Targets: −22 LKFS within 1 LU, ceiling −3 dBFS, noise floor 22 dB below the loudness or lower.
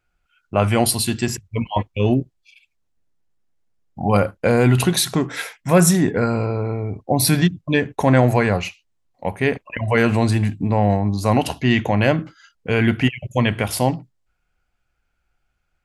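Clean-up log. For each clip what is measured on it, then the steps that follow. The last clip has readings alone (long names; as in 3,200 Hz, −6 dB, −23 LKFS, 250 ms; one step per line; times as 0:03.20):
integrated loudness −19.5 LKFS; sample peak −2.0 dBFS; target loudness −22.0 LKFS
→ level −2.5 dB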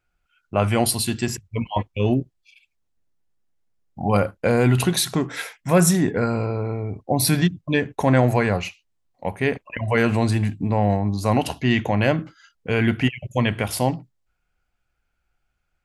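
integrated loudness −22.0 LKFS; sample peak −4.5 dBFS; background noise floor −74 dBFS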